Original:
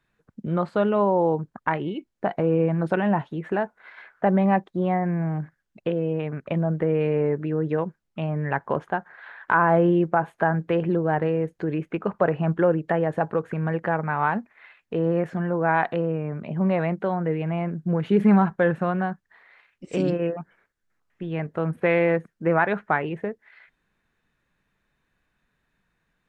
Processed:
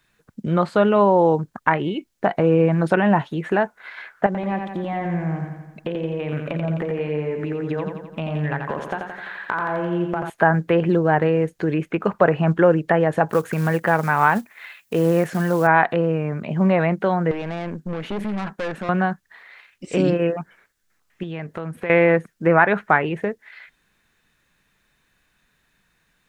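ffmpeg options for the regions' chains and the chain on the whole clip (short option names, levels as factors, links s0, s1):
-filter_complex "[0:a]asettb=1/sr,asplit=3[s0][s1][s2];[s0]atrim=end=4.264[s3];[s1]atrim=start=4.26:end=10.3,asetpts=PTS-STARTPTS,afade=t=in:d=0.004:c=qsin,afade=t=out:st=6.036:d=0.004:c=qsin,acompressor=threshold=0.0447:ratio=6:attack=3.2:release=140:knee=1:detection=peak,aecho=1:1:86|172|258|344|430|516|602|688:0.531|0.308|0.179|0.104|0.0601|0.0348|0.0202|0.0117,atrim=end_sample=266364[s4];[s2]atrim=start=10.296[s5];[s3][s4]acrossfade=d=0.004:c1=hsin:c2=qsin[s6];[s6][s5]acrossfade=d=0.004:c1=qsin:c2=hsin,asettb=1/sr,asplit=3[s7][s8][s9];[s7]atrim=end=13.294[s10];[s8]atrim=start=13.29:end=15.67,asetpts=PTS-STARTPTS,afade=t=in:d=0.004:c=qsin,afade=t=out:st=2.376:d=0.004:c=qsin,aemphasis=mode=production:type=50kf,acrusher=bits=7:mode=log:mix=0:aa=0.000001,highpass=44[s11];[s9]atrim=start=15.666[s12];[s10][s11]acrossfade=d=0.004:c1=hsin:c2=qsin[s13];[s13][s12]acrossfade=d=0.004:c1=qsin:c2=hsin,asettb=1/sr,asplit=3[s14][s15][s16];[s14]atrim=end=17.314[s17];[s15]atrim=start=17.31:end=18.89,asetpts=PTS-STARTPTS,afade=t=in:d=0.004:c=qsin,afade=t=out:st=1.576:d=0.004:c=qsin,lowshelf=f=150:t=q:w=1.5:g=-13.5,acompressor=threshold=0.0562:ratio=2:attack=3.2:release=140:knee=1:detection=peak,aeval=exprs='(tanh(25.1*val(0)+0.45)-tanh(0.45))/25.1':c=same[s18];[s16]atrim=start=18.886[s19];[s17][s18]acrossfade=d=0.004:c1=hsin:c2=qsin[s20];[s20][s19]acrossfade=d=0.004:c1=qsin:c2=hsin,asettb=1/sr,asplit=3[s21][s22][s23];[s21]atrim=end=21.234[s24];[s22]atrim=start=21.23:end=21.9,asetpts=PTS-STARTPTS,afade=t=in:d=0.004:c=qsin,afade=t=out:st=0.666:d=0.004:c=qsin,highpass=45,acompressor=threshold=0.0224:ratio=3:attack=3.2:release=140:knee=1:detection=peak[s25];[s23]atrim=start=21.896[s26];[s24][s25]acrossfade=d=0.004:c1=hsin:c2=qsin[s27];[s27][s26]acrossfade=d=0.004:c1=qsin:c2=hsin,acrossover=split=2600[s28][s29];[s29]acompressor=threshold=0.00251:ratio=4:attack=1:release=60[s30];[s28][s30]amix=inputs=2:normalize=0,highshelf=f=2500:g=11.5,volume=1.68"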